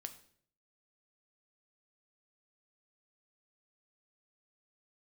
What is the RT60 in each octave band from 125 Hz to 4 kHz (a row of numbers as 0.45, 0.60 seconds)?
0.80, 0.70, 0.65, 0.50, 0.55, 0.50 seconds